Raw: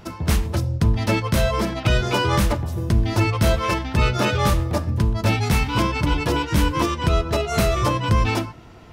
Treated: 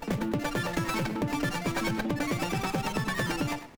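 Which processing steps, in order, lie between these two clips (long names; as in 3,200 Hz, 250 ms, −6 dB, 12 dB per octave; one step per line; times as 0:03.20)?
change of speed 2.66×
downward compressor, threshold −20 dBFS, peak gain reduction 6.5 dB
tempo change 0.89×
dynamic equaliser 2,200 Hz, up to +7 dB, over −45 dBFS, Q 2.3
on a send: single-tap delay 102 ms −12.5 dB
on the sum: windowed peak hold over 9 samples
level −6 dB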